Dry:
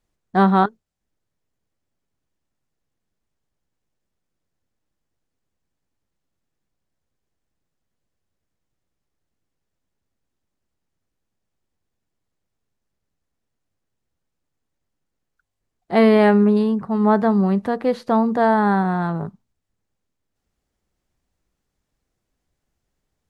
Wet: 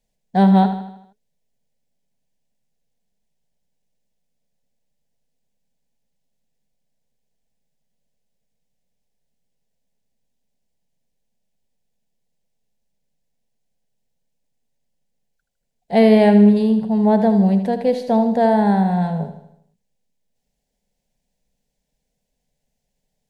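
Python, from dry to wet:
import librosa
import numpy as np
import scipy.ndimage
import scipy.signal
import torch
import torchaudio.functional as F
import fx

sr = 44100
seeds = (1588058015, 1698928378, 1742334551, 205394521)

y = fx.fixed_phaser(x, sr, hz=330.0, stages=6)
y = fx.echo_feedback(y, sr, ms=78, feedback_pct=51, wet_db=-10)
y = y * librosa.db_to_amplitude(3.0)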